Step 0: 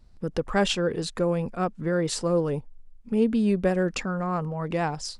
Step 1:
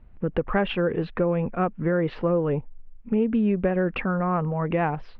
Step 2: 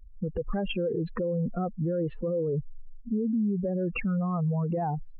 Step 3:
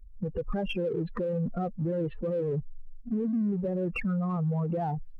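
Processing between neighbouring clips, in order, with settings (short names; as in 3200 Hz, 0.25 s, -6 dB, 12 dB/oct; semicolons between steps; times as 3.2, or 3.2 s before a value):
compressor, threshold -23 dBFS, peak gain reduction 7 dB; steep low-pass 2800 Hz 36 dB/oct; gain +4.5 dB
spectral contrast raised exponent 2.4; limiter -23.5 dBFS, peak gain reduction 9.5 dB; gain +1.5 dB
bin magnitudes rounded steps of 15 dB; in parallel at -12 dB: hard clip -36.5 dBFS, distortion -5 dB; on the sum: gain -1.5 dB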